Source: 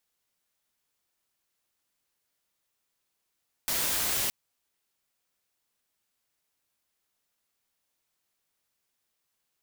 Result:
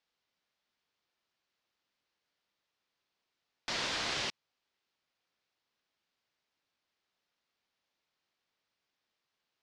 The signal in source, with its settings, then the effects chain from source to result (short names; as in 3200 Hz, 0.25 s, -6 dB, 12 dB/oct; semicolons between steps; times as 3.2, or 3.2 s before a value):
noise white, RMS -28.5 dBFS 0.62 s
LPF 5100 Hz 24 dB/oct; low shelf 83 Hz -9.5 dB